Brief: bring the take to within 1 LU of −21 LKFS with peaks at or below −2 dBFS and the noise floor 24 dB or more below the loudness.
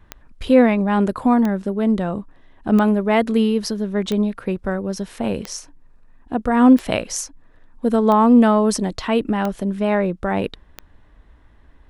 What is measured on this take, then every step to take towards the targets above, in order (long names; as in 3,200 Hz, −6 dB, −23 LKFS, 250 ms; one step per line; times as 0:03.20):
number of clicks 9; integrated loudness −18.5 LKFS; sample peak −2.0 dBFS; target loudness −21.0 LKFS
→ click removal
level −2.5 dB